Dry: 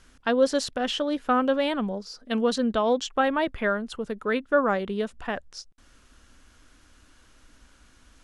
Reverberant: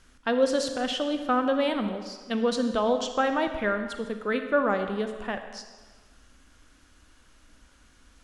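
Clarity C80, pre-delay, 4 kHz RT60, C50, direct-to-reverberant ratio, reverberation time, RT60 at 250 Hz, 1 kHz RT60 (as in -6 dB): 9.0 dB, 33 ms, 1.2 s, 8.0 dB, 7.0 dB, 1.4 s, 1.3 s, 1.4 s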